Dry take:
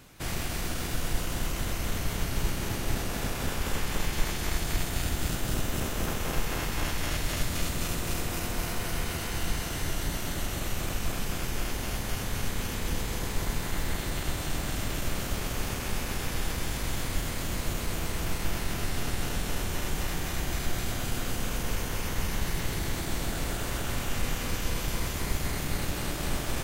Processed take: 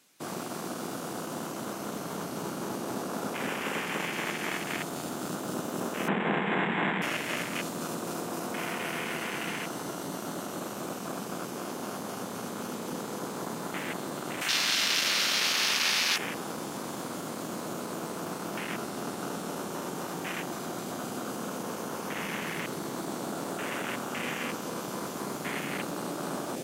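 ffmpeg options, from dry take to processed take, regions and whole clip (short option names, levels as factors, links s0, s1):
-filter_complex "[0:a]asettb=1/sr,asplit=3[s0][s1][s2];[s0]atrim=end=6.084[s3];[s1]atrim=start=6.08:end=7.02,asetpts=PTS-STARTPTS,afade=t=in:d=0.004:c=qsin,afade=t=out:st=0.936:d=0.004:c=qsin,acontrast=47,highpass=140,equalizer=f=190:t=q:w=4:g=8,equalizer=f=280:t=q:w=4:g=-5,equalizer=f=560:t=q:w=4:g=-6,equalizer=f=1300:t=q:w=4:g=-7,lowpass=f=2100:w=0.5412,lowpass=f=2100:w=1.3066[s4];[s2]atrim=start=7.016[s5];[s3][s4]acrossfade=d=0.004:c1=hsin:c2=qsin[s6];[s6][s5]acrossfade=d=0.004:c1=qsin:c2=hsin,asettb=1/sr,asplit=3[s7][s8][s9];[s7]atrim=end=14.414[s10];[s8]atrim=start=14.41:end=16.18,asetpts=PTS-STARTPTS,afade=t=in:d=0.004:c=qsin,afade=t=out:st=1.766:d=0.004:c=qsin,tiltshelf=f=870:g=-7.5,asplit=2[s11][s12];[s12]adelay=37,volume=0.299[s13];[s11][s13]amix=inputs=2:normalize=0,atrim=end_sample=78057[s14];[s9]atrim=start=16.176[s15];[s10][s14]acrossfade=d=0.004:c1=hsin:c2=qsin[s16];[s16][s15]acrossfade=d=0.004:c1=qsin:c2=hsin,afwtdn=0.0158,highpass=f=190:w=0.5412,highpass=f=190:w=1.3066,equalizer=f=7900:t=o:w=2.8:g=9.5,volume=1.33"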